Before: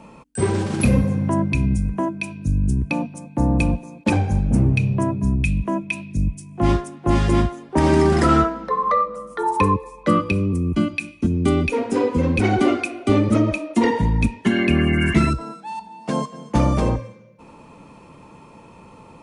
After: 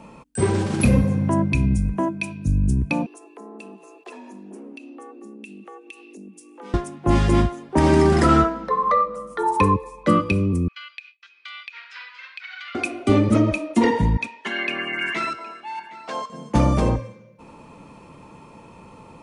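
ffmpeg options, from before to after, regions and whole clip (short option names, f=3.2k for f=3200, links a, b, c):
-filter_complex "[0:a]asettb=1/sr,asplit=3[a][b][c];[a]atrim=end=3.064[d];[b]atrim=start=3.06:end=6.74,asetpts=PTS-STARTPTS,afade=t=in:d=0.004:c=qsin,afade=t=out:st=3.676:d=0.004:c=qsin,lowshelf=f=440:g=-9.5,acompressor=threshold=-42dB:ratio=3:attack=3.2:release=140:knee=1:detection=peak,afreqshift=150[e];[c]atrim=start=6.736[f];[d][e]acrossfade=d=0.004:c1=hsin:c2=qsin[g];[g][f]acrossfade=d=0.004:c1=qsin:c2=hsin,asettb=1/sr,asplit=3[h][i][j];[h]atrim=end=10.684[k];[i]atrim=start=10.68:end=12.75,asetpts=PTS-STARTPTS,afade=t=in:d=0.004:c=qsin,afade=t=out:st=2.066:d=0.004:c=qsin,agate=range=-33dB:threshold=-35dB:ratio=3:release=100:detection=peak,asuperpass=centerf=2600:order=8:qfactor=0.78,acompressor=threshold=-32dB:ratio=12:attack=3.2:release=140:knee=1:detection=peak[l];[j]atrim=start=12.746[m];[k][l]acrossfade=d=0.004:c1=hsin:c2=qsin[n];[n][m]acrossfade=d=0.004:c1=qsin:c2=hsin,asettb=1/sr,asplit=3[o][p][q];[o]atrim=end=14.174[r];[p]atrim=start=14.17:end=16.3,asetpts=PTS-STARTPTS,afade=t=in:d=0.004:c=qsin,afade=t=out:st=2.126:d=0.004:c=qsin,highpass=690,lowpass=5.4k,aecho=1:1:765:0.106,atrim=end_sample=93933[s];[q]atrim=start=16.296[t];[r][s]acrossfade=d=0.004:c1=hsin:c2=qsin[u];[u][t]acrossfade=d=0.004:c1=qsin:c2=hsin"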